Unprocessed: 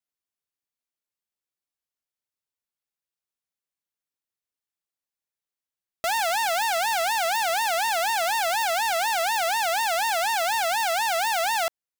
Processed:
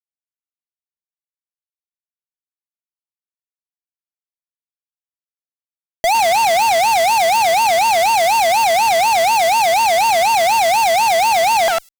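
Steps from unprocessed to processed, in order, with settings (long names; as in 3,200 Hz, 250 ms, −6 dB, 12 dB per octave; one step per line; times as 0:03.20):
repeating echo 104 ms, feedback 19%, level −23.5 dB
fuzz pedal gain 49 dB, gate −58 dBFS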